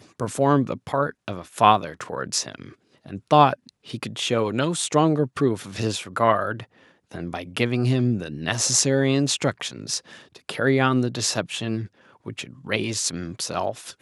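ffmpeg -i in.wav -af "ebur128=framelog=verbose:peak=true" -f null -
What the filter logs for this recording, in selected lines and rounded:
Integrated loudness:
  I:         -23.0 LUFS
  Threshold: -33.8 LUFS
Loudness range:
  LRA:         2.8 LU
  Threshold: -43.6 LUFS
  LRA low:   -25.3 LUFS
  LRA high:  -22.5 LUFS
True peak:
  Peak:       -2.0 dBFS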